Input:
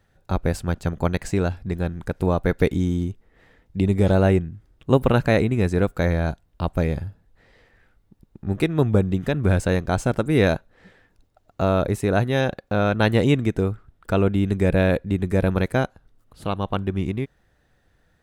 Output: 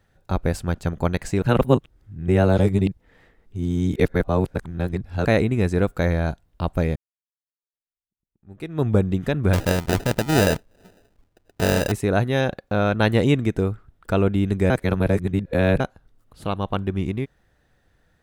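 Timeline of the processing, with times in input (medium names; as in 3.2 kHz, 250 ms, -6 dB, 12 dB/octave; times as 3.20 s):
1.42–5.25 s: reverse
6.96–8.87 s: fade in exponential
9.53–11.92 s: sample-rate reducer 1.1 kHz
14.70–15.80 s: reverse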